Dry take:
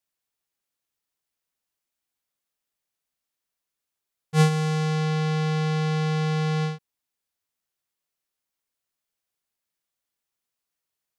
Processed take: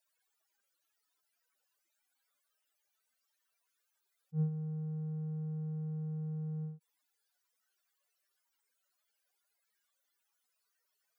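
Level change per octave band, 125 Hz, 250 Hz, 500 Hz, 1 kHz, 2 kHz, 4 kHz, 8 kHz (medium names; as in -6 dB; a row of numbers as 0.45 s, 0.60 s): -13.5 dB, no reading, -23.5 dB, under -30 dB, under -40 dB, under -40 dB, under -30 dB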